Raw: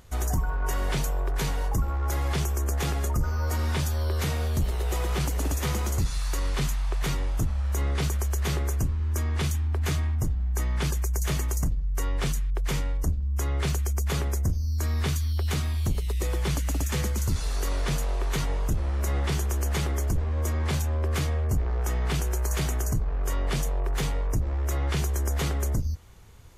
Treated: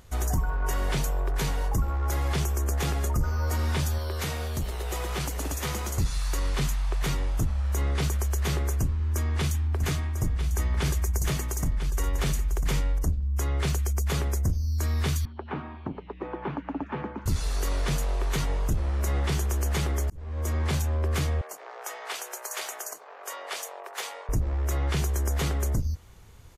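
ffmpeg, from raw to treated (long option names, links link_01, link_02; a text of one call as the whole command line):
ffmpeg -i in.wav -filter_complex "[0:a]asettb=1/sr,asplit=3[link_01][link_02][link_03];[link_01]atrim=end=3.984[link_04];[link_02]atrim=start=3.98:end=5.98,asetpts=PTS-STARTPTS,afade=type=in:duration=0.004:curve=qsin,afade=type=out:start_time=1.996:duration=0.004:curve=qsin,lowshelf=frequency=340:gain=-5.5[link_05];[link_03]atrim=start=5.976[link_06];[link_04][link_05]acrossfade=duration=0.004:curve1=hsin:curve2=qsin[link_07];[link_07][link_06]acrossfade=duration=0.004:curve1=qsin:curve2=hsin,asplit=3[link_08][link_09][link_10];[link_08]afade=type=out:start_time=9.76:duration=0.02[link_11];[link_09]aecho=1:1:997:0.355,afade=type=in:start_time=9.76:duration=0.02,afade=type=out:start_time=12.97:duration=0.02[link_12];[link_10]afade=type=in:start_time=12.97:duration=0.02[link_13];[link_11][link_12][link_13]amix=inputs=3:normalize=0,asettb=1/sr,asplit=3[link_14][link_15][link_16];[link_14]atrim=end=15.254[link_17];[link_15]atrim=start=15.25:end=17.26,asetpts=PTS-STARTPTS,afade=type=in:duration=0.004:curve=qsin,afade=type=out:start_time=2.006:duration=0.004:curve=qsin,highpass=210,equalizer=frequency=280:width_type=q:width=4:gain=7,equalizer=frequency=510:width_type=q:width=4:gain=-3,equalizer=frequency=890:width_type=q:width=4:gain=7,equalizer=frequency=2000:width_type=q:width=4:gain=-7,lowpass=frequency=2100:width=0.5412,lowpass=frequency=2100:width=1.3066[link_18];[link_16]atrim=start=17.256[link_19];[link_17][link_18]acrossfade=duration=0.004:curve1=hsin:curve2=qsin[link_20];[link_20][link_19]acrossfade=duration=0.004:curve1=qsin:curve2=hsin,asettb=1/sr,asplit=3[link_21][link_22][link_23];[link_21]atrim=end=21.414[link_24];[link_22]atrim=start=21.41:end=24.29,asetpts=PTS-STARTPTS,afade=type=in:duration=0.004:curve=qsin,afade=type=out:start_time=2.876:duration=0.004:curve=qsin,highpass=frequency=550:width=0.5412,highpass=frequency=550:width=1.3066[link_25];[link_23]atrim=start=24.286[link_26];[link_24][link_25]acrossfade=duration=0.004:curve1=hsin:curve2=qsin[link_27];[link_27][link_26]acrossfade=duration=0.004:curve1=qsin:curve2=hsin,asplit=2[link_28][link_29];[link_28]atrim=end=20.1,asetpts=PTS-STARTPTS,afade=type=out:start_time=20.096:duration=0.004:curve=hsin[link_30];[link_29]atrim=start=20.1,asetpts=PTS-STARTPTS,afade=type=in:duration=0.44[link_31];[link_30][link_31]concat=n=2:v=0:a=1" out.wav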